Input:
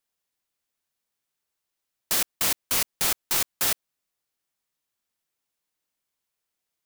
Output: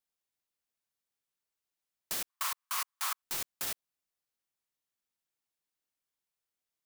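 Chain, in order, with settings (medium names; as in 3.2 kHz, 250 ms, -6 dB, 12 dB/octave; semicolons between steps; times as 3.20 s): peak limiter -17 dBFS, peak gain reduction 7 dB; 2.29–3.22 s: resonant high-pass 1.1 kHz, resonance Q 4.9; trim -7.5 dB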